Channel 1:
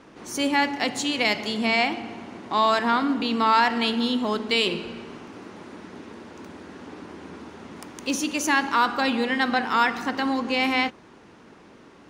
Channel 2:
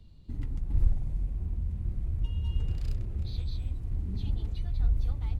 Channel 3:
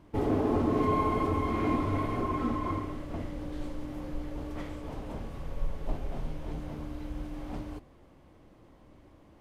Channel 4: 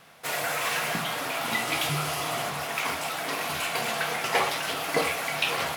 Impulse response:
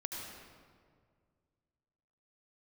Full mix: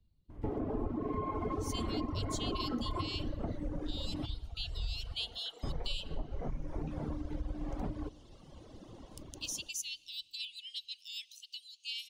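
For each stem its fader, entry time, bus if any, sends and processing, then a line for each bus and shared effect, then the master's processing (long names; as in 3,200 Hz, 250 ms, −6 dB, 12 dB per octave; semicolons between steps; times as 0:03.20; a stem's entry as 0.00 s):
−8.5 dB, 1.35 s, send −12.5 dB, Butterworth high-pass 2,800 Hz 72 dB per octave
−18.0 dB, 0.00 s, no send, automatic gain control gain up to 11.5 dB
+1.0 dB, 0.30 s, muted 0:04.26–0:05.63, send −11.5 dB, automatic gain control gain up to 6.5 dB; low-pass filter 1,100 Hz 6 dB per octave; downward compressor 2 to 1, threshold −34 dBFS, peak gain reduction 9.5 dB
−15.5 dB, 1.45 s, no send, resonant band-pass 360 Hz, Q 1.3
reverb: on, RT60 2.0 s, pre-delay 69 ms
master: reverb reduction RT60 1.6 s; downward compressor 5 to 1, threshold −32 dBFS, peak gain reduction 9.5 dB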